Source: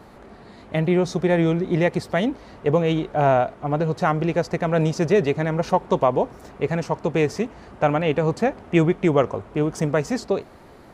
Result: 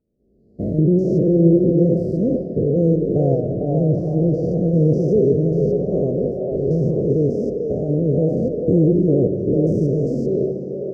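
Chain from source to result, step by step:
spectrum averaged block by block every 200 ms
camcorder AGC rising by 11 dB per second
downward expander −28 dBFS
inverse Chebyshev band-stop filter 860–3,600 Hz, stop band 40 dB
high-shelf EQ 5,100 Hz +11 dB
echo through a band-pass that steps 446 ms, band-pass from 630 Hz, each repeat 0.7 octaves, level −1 dB
pitch vibrato 2.2 Hz 43 cents
high-frequency loss of the air 350 metres
on a send at −10 dB: convolution reverb RT60 2.4 s, pre-delay 130 ms
on the sum: level +7 dB

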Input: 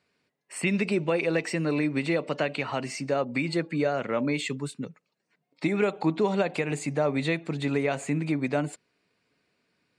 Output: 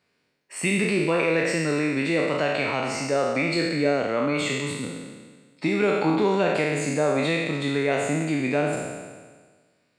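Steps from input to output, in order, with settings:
peak hold with a decay on every bin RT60 1.50 s

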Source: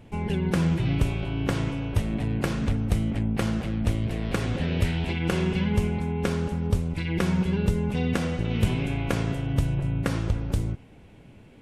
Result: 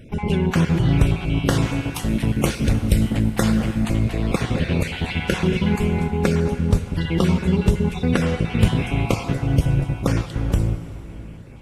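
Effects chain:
time-frequency cells dropped at random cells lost 25%
0:01.28–0:03.52: high-shelf EQ 4,700 Hz +8.5 dB
dense smooth reverb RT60 3.8 s, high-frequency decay 0.8×, pre-delay 0 ms, DRR 9.5 dB
level +6.5 dB

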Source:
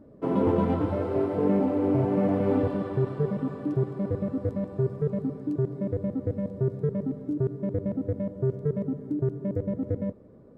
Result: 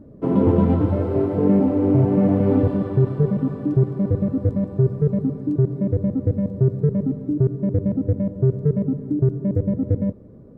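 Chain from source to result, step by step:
low-shelf EQ 340 Hz +11.5 dB

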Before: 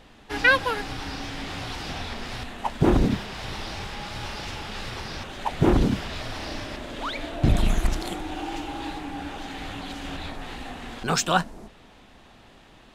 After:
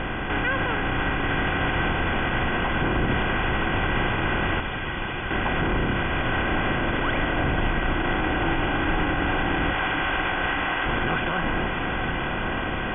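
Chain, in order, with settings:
compressor on every frequency bin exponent 0.4
0:04.60–0:05.31: first difference
0:09.73–0:10.86: high-pass filter 680 Hz 12 dB per octave
brickwall limiter −13 dBFS, peak gain reduction 10.5 dB
linear-phase brick-wall low-pass 3,500 Hz
feedback delay with all-pass diffusion 1,016 ms, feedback 45%, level −6 dB
level −2.5 dB

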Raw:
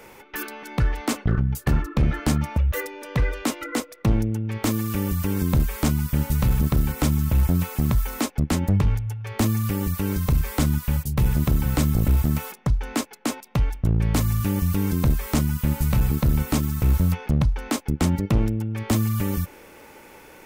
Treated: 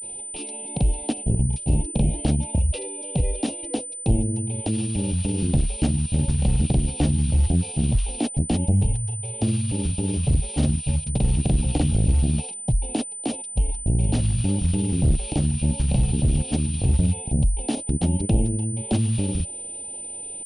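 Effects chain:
Chebyshev band-stop filter 800–2,700 Hz, order 3
granular cloud 100 ms, grains 20 per second, spray 26 ms, pitch spread up and down by 0 semitones
switching amplifier with a slow clock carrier 9,000 Hz
level +1.5 dB

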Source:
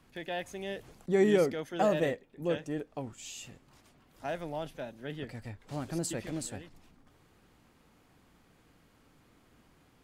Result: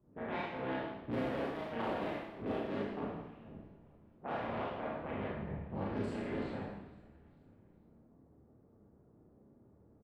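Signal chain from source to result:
sub-harmonics by changed cycles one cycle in 3, inverted
low-pass that shuts in the quiet parts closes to 2,200 Hz, open at −28.5 dBFS
high-pass filter 74 Hz
low-pass that shuts in the quiet parts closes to 430 Hz, open at −28.5 dBFS
high-shelf EQ 3,200 Hz +11 dB
downward compressor 16 to 1, threshold −35 dBFS, peak gain reduction 17.5 dB
high-frequency loss of the air 480 metres
echo with shifted repeats 443 ms, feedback 48%, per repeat −82 Hz, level −22.5 dB
four-comb reverb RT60 0.95 s, combs from 27 ms, DRR −6 dB
level −2.5 dB

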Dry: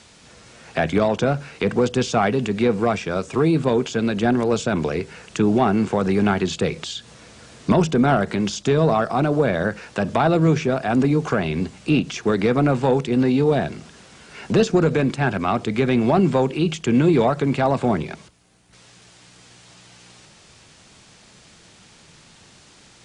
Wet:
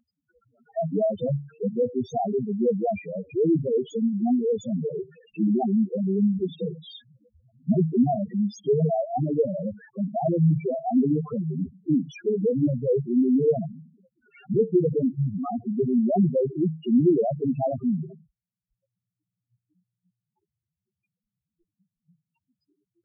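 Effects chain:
spectral peaks only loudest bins 2
noise reduction from a noise print of the clip's start 27 dB

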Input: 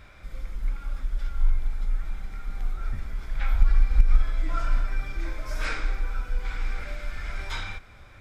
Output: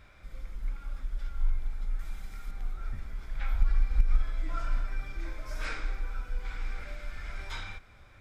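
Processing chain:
0:01.99–0:02.51: high-shelf EQ 4,000 Hz +11.5 dB
level −6 dB

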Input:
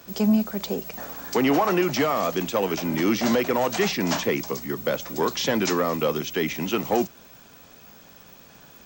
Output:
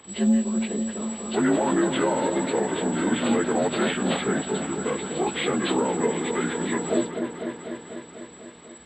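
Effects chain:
partials spread apart or drawn together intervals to 83%
echo whose low-pass opens from repeat to repeat 248 ms, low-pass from 750 Hz, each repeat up 1 octave, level −6 dB

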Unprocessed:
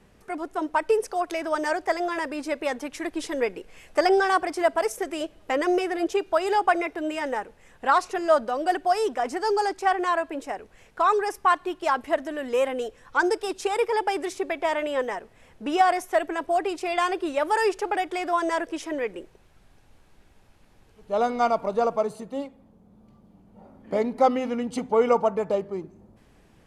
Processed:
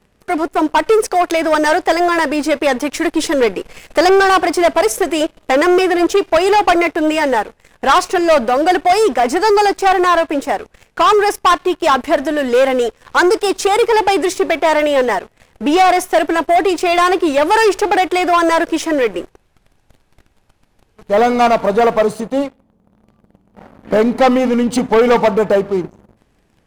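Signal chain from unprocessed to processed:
leveller curve on the samples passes 3
level +4 dB

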